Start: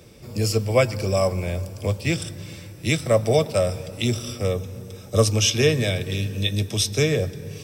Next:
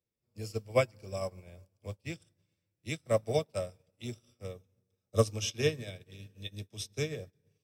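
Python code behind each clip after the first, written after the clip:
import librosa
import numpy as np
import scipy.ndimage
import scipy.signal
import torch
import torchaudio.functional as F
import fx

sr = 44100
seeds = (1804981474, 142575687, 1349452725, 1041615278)

y = fx.upward_expand(x, sr, threshold_db=-38.0, expansion=2.5)
y = y * 10.0 ** (-6.0 / 20.0)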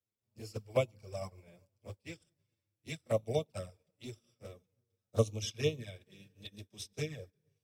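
y = fx.env_flanger(x, sr, rest_ms=9.6, full_db=-27.0)
y = y * 10.0 ** (-2.0 / 20.0)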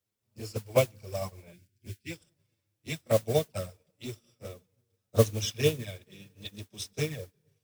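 y = fx.mod_noise(x, sr, seeds[0], snr_db=16)
y = fx.spec_box(y, sr, start_s=1.53, length_s=0.58, low_hz=420.0, high_hz=1400.0, gain_db=-21)
y = y * 10.0 ** (6.5 / 20.0)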